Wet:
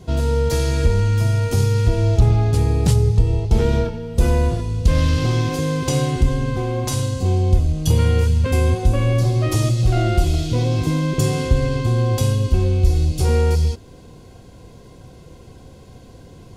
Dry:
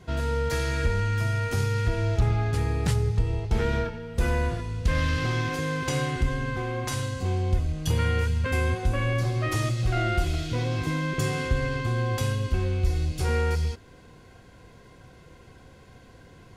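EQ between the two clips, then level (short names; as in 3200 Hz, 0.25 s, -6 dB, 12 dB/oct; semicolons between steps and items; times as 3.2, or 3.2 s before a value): bell 1700 Hz -12 dB 1.4 oct; +9.0 dB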